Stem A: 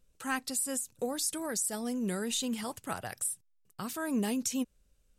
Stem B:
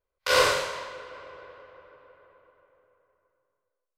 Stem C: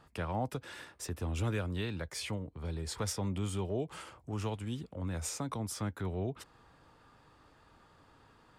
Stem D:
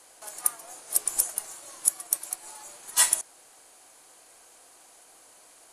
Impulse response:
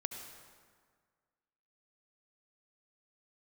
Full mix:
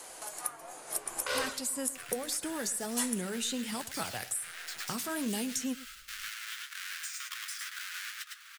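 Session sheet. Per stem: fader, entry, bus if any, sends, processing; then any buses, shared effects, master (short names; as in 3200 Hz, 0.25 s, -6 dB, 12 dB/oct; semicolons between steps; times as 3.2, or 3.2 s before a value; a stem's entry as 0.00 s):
0.0 dB, 1.10 s, no send, echo send -18.5 dB, dry
-8.0 dB, 1.00 s, no send, no echo send, reverb removal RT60 1.8 s
-2.0 dB, 1.80 s, no send, echo send -4 dB, half-waves squared off; steep high-pass 1400 Hz 48 dB/oct; compressor, threshold -42 dBFS, peak gain reduction 11 dB
-8.0 dB, 0.00 s, no send, no echo send, dry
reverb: off
echo: echo 0.106 s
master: AGC gain up to 3 dB; flange 1.3 Hz, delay 4.3 ms, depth 4.3 ms, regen -62%; three-band squash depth 70%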